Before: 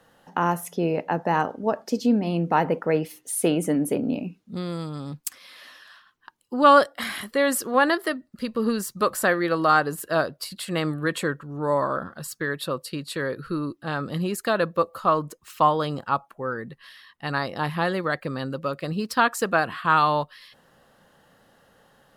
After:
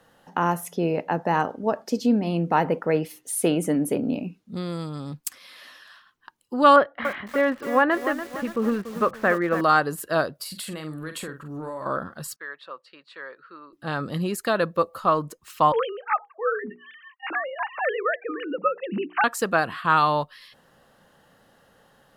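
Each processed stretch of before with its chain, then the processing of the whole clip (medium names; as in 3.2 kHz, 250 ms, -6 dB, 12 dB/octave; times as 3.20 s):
6.76–9.61 s: low-pass 2.5 kHz 24 dB/octave + bit-crushed delay 288 ms, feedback 55%, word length 6-bit, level -10 dB
10.35–11.86 s: treble shelf 6.4 kHz +7.5 dB + compression 10:1, threshold -30 dBFS + doubling 45 ms -8.5 dB
12.36–13.73 s: high-pass 1 kHz + tape spacing loss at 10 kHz 36 dB
15.72–19.24 s: formants replaced by sine waves + hum notches 60/120/180/240/300/360/420/480 Hz
whole clip: none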